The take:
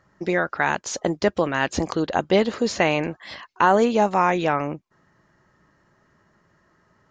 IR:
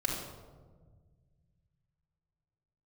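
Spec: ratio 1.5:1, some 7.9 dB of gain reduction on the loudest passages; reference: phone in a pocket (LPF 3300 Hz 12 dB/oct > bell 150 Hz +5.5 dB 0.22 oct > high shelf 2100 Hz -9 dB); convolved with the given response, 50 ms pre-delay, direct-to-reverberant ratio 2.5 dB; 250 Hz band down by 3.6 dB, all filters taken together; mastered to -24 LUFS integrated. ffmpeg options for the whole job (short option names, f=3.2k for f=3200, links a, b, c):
-filter_complex "[0:a]equalizer=f=250:t=o:g=-5.5,acompressor=threshold=-37dB:ratio=1.5,asplit=2[a][b];[1:a]atrim=start_sample=2205,adelay=50[c];[b][c]afir=irnorm=-1:irlink=0,volume=-8.5dB[d];[a][d]amix=inputs=2:normalize=0,lowpass=3.3k,equalizer=f=150:t=o:w=0.22:g=5.5,highshelf=f=2.1k:g=-9,volume=5.5dB"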